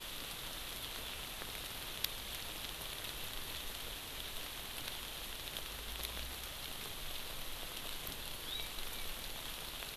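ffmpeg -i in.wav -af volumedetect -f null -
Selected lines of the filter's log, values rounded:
mean_volume: -43.9 dB
max_volume: -15.1 dB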